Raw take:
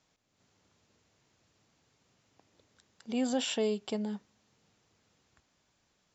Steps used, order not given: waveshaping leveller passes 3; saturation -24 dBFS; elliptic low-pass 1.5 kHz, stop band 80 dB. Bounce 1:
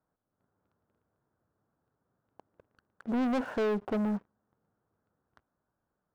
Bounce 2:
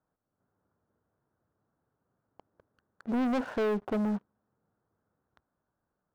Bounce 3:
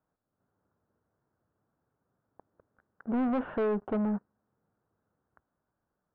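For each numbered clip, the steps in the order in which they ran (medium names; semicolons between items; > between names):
elliptic low-pass > saturation > waveshaping leveller; elliptic low-pass > waveshaping leveller > saturation; waveshaping leveller > elliptic low-pass > saturation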